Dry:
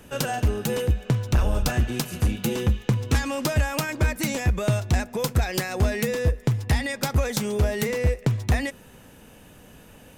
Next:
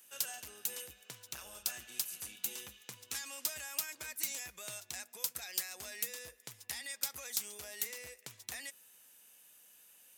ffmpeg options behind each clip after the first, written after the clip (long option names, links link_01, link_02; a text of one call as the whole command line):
ffmpeg -i in.wav -af "aderivative,volume=-4.5dB" out.wav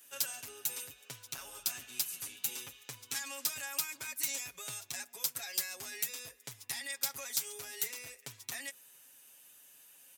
ffmpeg -i in.wav -af "aecho=1:1:7.3:0.9" out.wav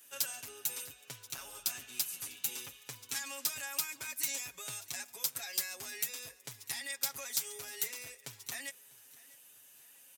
ffmpeg -i in.wav -af "aecho=1:1:648|1296|1944:0.0794|0.035|0.0154" out.wav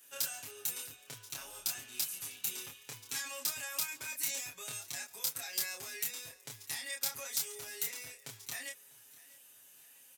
ffmpeg -i in.wav -filter_complex "[0:a]asplit=2[link_01][link_02];[link_02]adelay=27,volume=-3dB[link_03];[link_01][link_03]amix=inputs=2:normalize=0,volume=-2dB" out.wav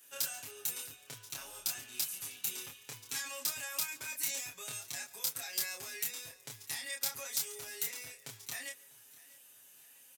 ffmpeg -i in.wav -af "aecho=1:1:139:0.0631" out.wav